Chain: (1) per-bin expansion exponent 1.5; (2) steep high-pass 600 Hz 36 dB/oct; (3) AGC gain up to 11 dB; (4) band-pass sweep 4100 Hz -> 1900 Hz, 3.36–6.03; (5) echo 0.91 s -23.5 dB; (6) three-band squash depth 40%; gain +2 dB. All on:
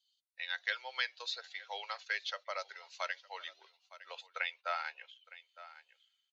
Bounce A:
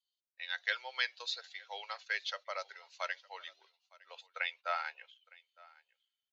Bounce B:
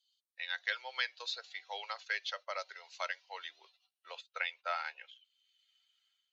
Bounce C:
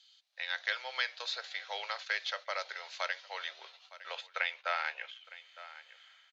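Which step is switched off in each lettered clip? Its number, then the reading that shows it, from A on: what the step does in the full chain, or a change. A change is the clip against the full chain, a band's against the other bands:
6, momentary loudness spread change -2 LU; 5, momentary loudness spread change -5 LU; 1, loudness change +3.0 LU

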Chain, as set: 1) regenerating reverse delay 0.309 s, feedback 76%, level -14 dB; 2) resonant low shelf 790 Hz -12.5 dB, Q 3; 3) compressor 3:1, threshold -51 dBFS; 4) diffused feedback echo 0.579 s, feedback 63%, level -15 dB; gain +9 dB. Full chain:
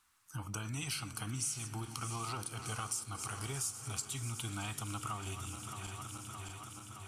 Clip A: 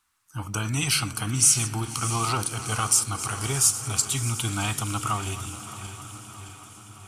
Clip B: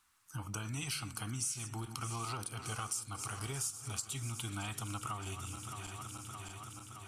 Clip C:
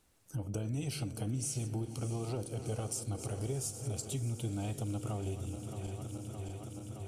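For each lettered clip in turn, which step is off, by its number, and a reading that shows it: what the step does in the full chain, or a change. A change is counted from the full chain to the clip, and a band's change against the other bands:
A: 3, mean gain reduction 10.0 dB; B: 4, echo-to-direct -13.0 dB to none; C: 2, 500 Hz band +14.0 dB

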